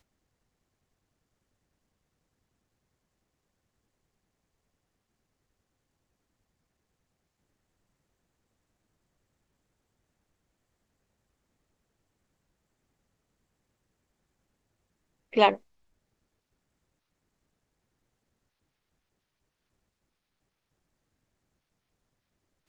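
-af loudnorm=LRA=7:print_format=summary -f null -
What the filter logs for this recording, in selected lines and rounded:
Input Integrated:    -24.5 LUFS
Input True Peak:      -6.3 dBTP
Input LRA:             0.0 LU
Input Threshold:     -35.3 LUFS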